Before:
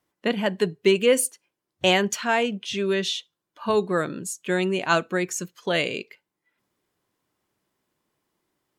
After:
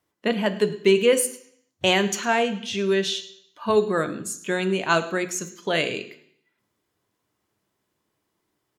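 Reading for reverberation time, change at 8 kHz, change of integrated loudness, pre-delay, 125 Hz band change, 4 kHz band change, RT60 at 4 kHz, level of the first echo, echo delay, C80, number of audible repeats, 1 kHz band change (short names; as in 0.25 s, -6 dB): 0.65 s, +0.5 dB, +1.0 dB, 3 ms, 0.0 dB, +0.5 dB, 0.70 s, -20.5 dB, 0.106 s, 16.0 dB, 1, +0.5 dB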